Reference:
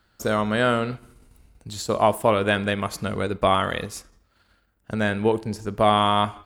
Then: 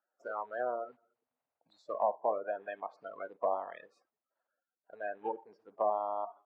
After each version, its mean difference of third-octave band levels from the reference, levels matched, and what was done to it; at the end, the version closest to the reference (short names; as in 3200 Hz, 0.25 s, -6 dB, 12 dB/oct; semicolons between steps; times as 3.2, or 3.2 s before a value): 14.5 dB: bin magnitudes rounded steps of 30 dB; ladder band-pass 760 Hz, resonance 45%; spectral noise reduction 9 dB; treble ducked by the level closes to 830 Hz, closed at -29 dBFS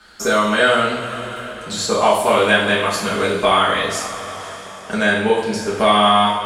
7.5 dB: LPF 8500 Hz 12 dB/oct; tilt +2 dB/oct; two-slope reverb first 0.54 s, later 3.1 s, from -16 dB, DRR -8.5 dB; three-band squash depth 40%; gain -2 dB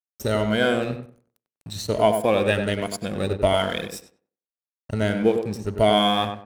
4.0 dB: moving spectral ripple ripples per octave 1.8, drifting +1.3 Hz, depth 13 dB; bell 1100 Hz -10.5 dB 0.65 oct; crossover distortion -41.5 dBFS; on a send: tape echo 95 ms, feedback 26%, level -5 dB, low-pass 1500 Hz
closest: third